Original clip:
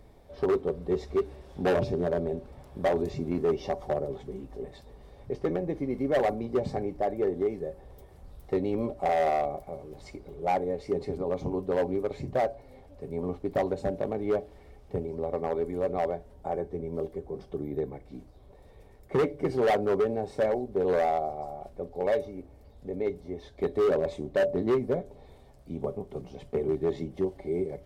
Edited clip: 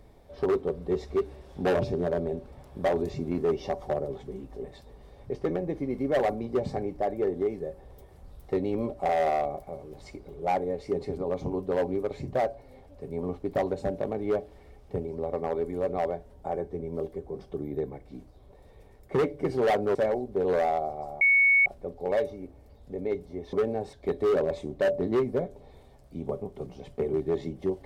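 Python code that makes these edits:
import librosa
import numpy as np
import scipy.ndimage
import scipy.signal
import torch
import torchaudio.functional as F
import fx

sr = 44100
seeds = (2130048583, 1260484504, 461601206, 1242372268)

y = fx.edit(x, sr, fx.move(start_s=19.95, length_s=0.4, to_s=23.48),
    fx.insert_tone(at_s=21.61, length_s=0.45, hz=2220.0, db=-17.0), tone=tone)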